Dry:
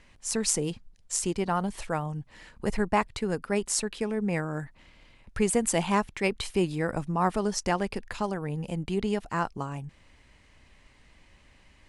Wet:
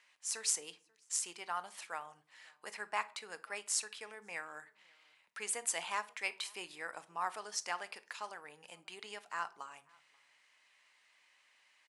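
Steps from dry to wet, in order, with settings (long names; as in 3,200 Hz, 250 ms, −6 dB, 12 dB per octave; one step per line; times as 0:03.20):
high-pass filter 1,100 Hz 12 dB per octave
slap from a distant wall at 92 metres, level −27 dB
rectangular room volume 380 cubic metres, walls furnished, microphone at 0.46 metres
level −6 dB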